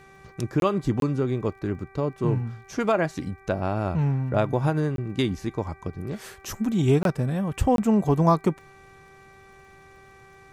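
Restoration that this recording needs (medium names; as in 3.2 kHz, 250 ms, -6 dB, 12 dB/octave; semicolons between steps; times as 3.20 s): de-click; de-hum 388.7 Hz, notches 6; interpolate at 0.60/1.00/4.96/7.03/7.76 s, 22 ms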